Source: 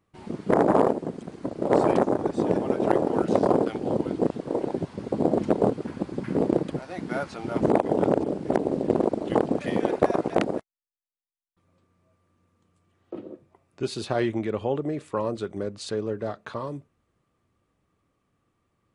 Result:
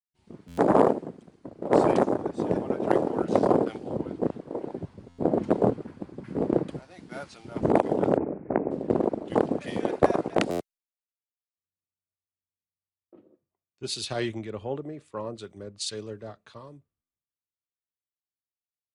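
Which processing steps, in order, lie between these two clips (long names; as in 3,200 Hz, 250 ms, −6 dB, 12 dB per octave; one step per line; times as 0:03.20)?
0:08.17–0:08.71: Butterworth low-pass 2,500 Hz 72 dB per octave
buffer that repeats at 0:00.47/0:05.08/0:10.50/0:17.01, samples 512, times 8
multiband upward and downward expander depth 100%
level −2.5 dB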